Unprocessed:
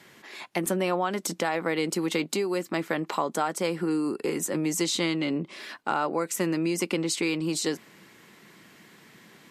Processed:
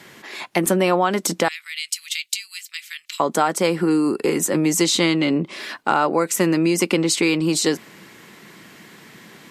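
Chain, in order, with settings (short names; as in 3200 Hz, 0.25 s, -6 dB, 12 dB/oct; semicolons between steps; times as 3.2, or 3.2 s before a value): 1.48–3.2 inverse Chebyshev high-pass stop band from 720 Hz, stop band 60 dB; gain +8.5 dB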